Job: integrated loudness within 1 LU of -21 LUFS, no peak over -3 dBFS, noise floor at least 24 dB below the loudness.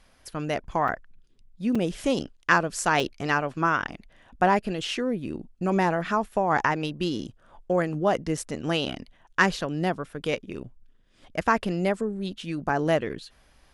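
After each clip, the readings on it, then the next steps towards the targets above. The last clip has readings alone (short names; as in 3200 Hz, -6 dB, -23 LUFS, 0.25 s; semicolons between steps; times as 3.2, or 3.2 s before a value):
dropouts 5; longest dropout 4.3 ms; loudness -26.5 LUFS; peak -5.5 dBFS; loudness target -21.0 LUFS
-> interpolate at 0.88/1.75/3/8.37/12.69, 4.3 ms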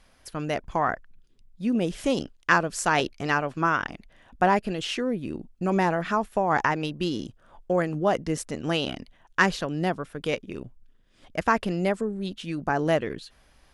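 dropouts 0; loudness -26.5 LUFS; peak -5.5 dBFS; loudness target -21.0 LUFS
-> gain +5.5 dB; limiter -3 dBFS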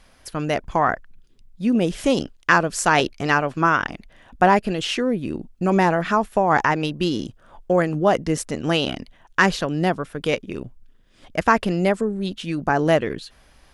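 loudness -21.5 LUFS; peak -3.0 dBFS; noise floor -54 dBFS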